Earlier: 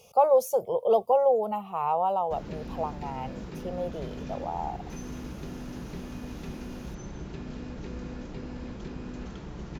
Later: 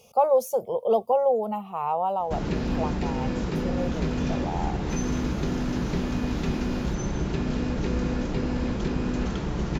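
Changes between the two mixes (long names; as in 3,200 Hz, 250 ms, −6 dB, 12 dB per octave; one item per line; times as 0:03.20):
speech: add parametric band 230 Hz +7 dB 0.36 octaves
background +11.5 dB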